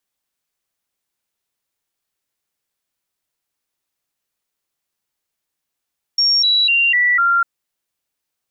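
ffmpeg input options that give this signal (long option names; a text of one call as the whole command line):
ffmpeg -f lavfi -i "aevalsrc='0.266*clip(min(mod(t,0.25),0.25-mod(t,0.25))/0.005,0,1)*sin(2*PI*5540*pow(2,-floor(t/0.25)/2)*mod(t,0.25))':duration=1.25:sample_rate=44100" out.wav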